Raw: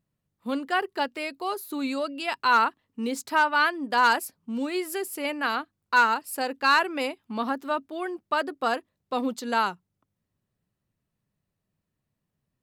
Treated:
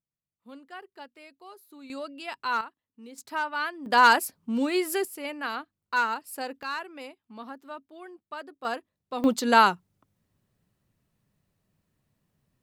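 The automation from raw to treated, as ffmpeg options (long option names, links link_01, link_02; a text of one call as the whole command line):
ffmpeg -i in.wav -af "asetnsamples=nb_out_samples=441:pad=0,asendcmd='1.9 volume volume -7.5dB;2.61 volume volume -17dB;3.18 volume volume -8dB;3.86 volume volume 3dB;5.05 volume volume -5.5dB;6.63 volume volume -13dB;8.65 volume volume -5dB;9.24 volume volume 6.5dB',volume=-17.5dB" out.wav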